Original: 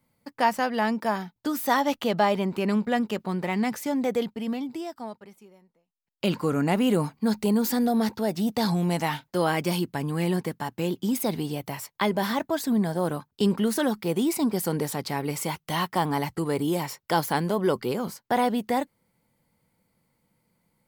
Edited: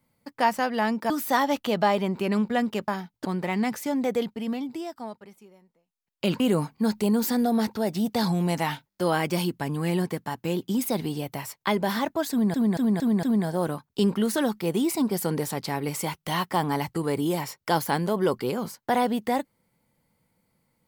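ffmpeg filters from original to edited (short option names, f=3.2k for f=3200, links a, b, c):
-filter_complex "[0:a]asplit=13[a][b][c][d][e][f][g][h][i][j][k][l][m];[a]atrim=end=1.102[n];[b]atrim=start=1.468:end=3.252[o];[c]atrim=start=1.098:end=1.472[p];[d]atrim=start=3.248:end=6.402[q];[e]atrim=start=6.818:end=9.332[r];[f]atrim=start=9.308:end=9.332[s];[g]atrim=start=9.308:end=9.332[t];[h]atrim=start=9.308:end=9.332[u];[i]atrim=start=9.308:end=12.882[v];[j]atrim=start=12.648:end=12.882[w];[k]atrim=start=12.648:end=12.882[x];[l]atrim=start=12.648:end=12.882[y];[m]atrim=start=12.648[z];[n][o]acrossfade=d=0.004:c1=hsin:c2=hsin[aa];[aa][p]acrossfade=d=0.004:c1=hsin:c2=hsin[ab];[ab][q]acrossfade=d=0.004:c1=hsin:c2=hsin[ac];[ac][r]acrossfade=d=0.004:c1=hsin:c2=hsin[ad];[ad][s]acrossfade=d=0.004:c1=hsin:c2=hsin[ae];[ae][t]acrossfade=d=0.004:c1=hsin:c2=hsin[af];[af][u]acrossfade=d=0.004:c1=hsin:c2=hsin[ag];[ag][v]acrossfade=d=0.004:c1=hsin:c2=hsin[ah];[ah][w]acrossfade=d=0.004:c1=hsin:c2=hsin[ai];[ai][x]acrossfade=d=0.004:c1=hsin:c2=hsin[aj];[aj][y]acrossfade=d=0.004:c1=hsin:c2=hsin[ak];[ak][z]acrossfade=d=0.004:c1=hsin:c2=hsin"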